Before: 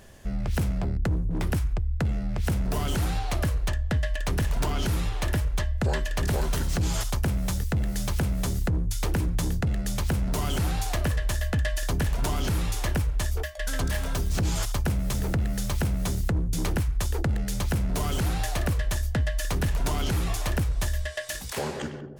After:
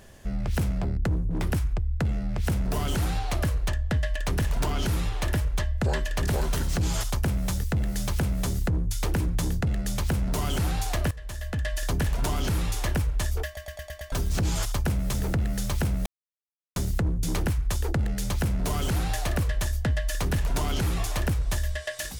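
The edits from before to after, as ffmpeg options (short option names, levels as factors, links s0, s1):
-filter_complex "[0:a]asplit=9[s0][s1][s2][s3][s4][s5][s6][s7][s8];[s0]atrim=end=11.11,asetpts=PTS-STARTPTS,afade=t=out:st=11.106:d=0.004:c=hsin:silence=0.133352[s9];[s1]atrim=start=11.11:end=13.572,asetpts=PTS-STARTPTS,afade=t=in:d=0.77:silence=0.133352[s10];[s2]atrim=start=13.458:end=13.572[s11];[s3]atrim=start=13.458:end=13.572[s12];[s4]atrim=start=13.458:end=13.572[s13];[s5]atrim=start=13.458:end=13.572[s14];[s6]atrim=start=13.458:end=13.572[s15];[s7]atrim=start=14.118:end=16.06,asetpts=PTS-STARTPTS,afade=t=out:st=1.938:d=0.004:c=hsin,apad=pad_dur=0.7[s16];[s8]atrim=start=16.06,asetpts=PTS-STARTPTS,afade=t=in:d=0.004:c=hsin[s17];[s9][s10]concat=n=2:v=0:a=1[s18];[s18][s11]acrossfade=d=0.004:c1=hsin:c2=hsin[s19];[s19][s12]acrossfade=d=0.004:c1=hsin:c2=hsin[s20];[s20][s13]acrossfade=d=0.004:c1=hsin:c2=hsin[s21];[s21][s14]acrossfade=d=0.004:c1=hsin:c2=hsin[s22];[s22][s15]acrossfade=d=0.004:c1=hsin:c2=hsin[s23];[s16][s17]concat=n=2:v=0:a=1[s24];[s23][s24]acrossfade=d=0.004:c1=hsin:c2=hsin"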